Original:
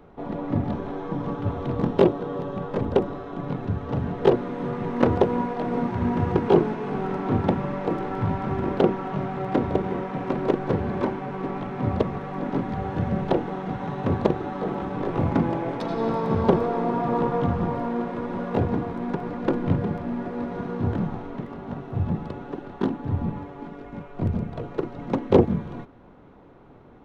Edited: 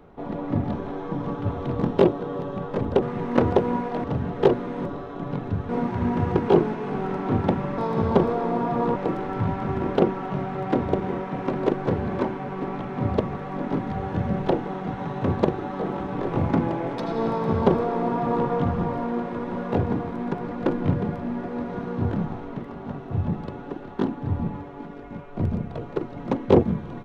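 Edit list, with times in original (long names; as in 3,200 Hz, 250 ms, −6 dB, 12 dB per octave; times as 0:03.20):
0:03.02–0:03.86: swap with 0:04.67–0:05.69
0:16.11–0:17.29: duplicate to 0:07.78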